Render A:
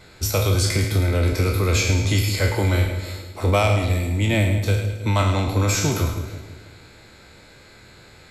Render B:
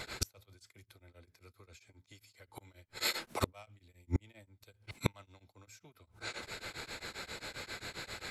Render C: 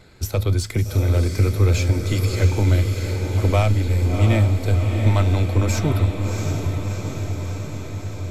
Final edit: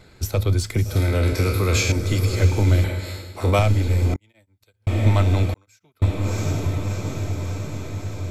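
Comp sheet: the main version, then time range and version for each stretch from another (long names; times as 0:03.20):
C
0:00.96–0:01.92: punch in from A
0:02.84–0:03.59: punch in from A
0:04.14–0:04.87: punch in from B
0:05.54–0:06.02: punch in from B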